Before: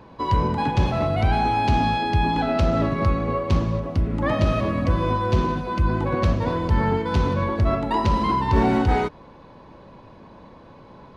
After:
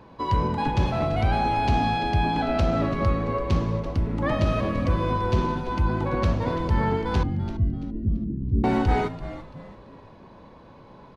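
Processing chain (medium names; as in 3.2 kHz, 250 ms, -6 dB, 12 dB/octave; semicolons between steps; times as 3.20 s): 7.23–8.64 s: inverse Chebyshev low-pass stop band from 1 kHz, stop band 60 dB; frequency-shifting echo 337 ms, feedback 37%, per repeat -110 Hz, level -13 dB; trim -2.5 dB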